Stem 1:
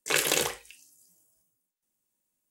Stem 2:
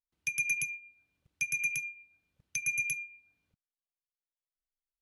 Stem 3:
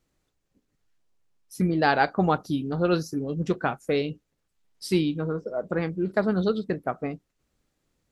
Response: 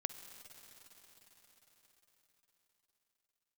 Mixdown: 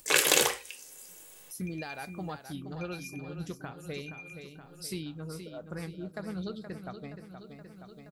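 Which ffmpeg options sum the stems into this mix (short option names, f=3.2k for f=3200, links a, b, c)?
-filter_complex "[0:a]lowshelf=f=160:g=-9.5,dynaudnorm=f=200:g=5:m=7.5dB,volume=1dB,asplit=2[a][b];[b]volume=-22dB[c];[1:a]lowpass=2.7k,adelay=1400,volume=-13dB[d];[2:a]aemphasis=mode=production:type=75kf,alimiter=limit=-14dB:level=0:latency=1:release=253,asubboost=boost=2.5:cutoff=180,volume=-13.5dB,asplit=2[e][f];[f]volume=-9dB[g];[3:a]atrim=start_sample=2205[h];[c][h]afir=irnorm=-1:irlink=0[i];[g]aecho=0:1:473|946|1419|1892|2365|2838|3311|3784:1|0.55|0.303|0.166|0.0915|0.0503|0.0277|0.0152[j];[a][d][e][i][j]amix=inputs=5:normalize=0,acompressor=mode=upward:threshold=-42dB:ratio=2.5"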